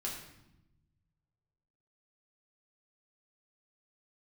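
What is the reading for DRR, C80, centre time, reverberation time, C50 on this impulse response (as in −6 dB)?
−3.5 dB, 7.0 dB, 41 ms, 0.90 s, 4.0 dB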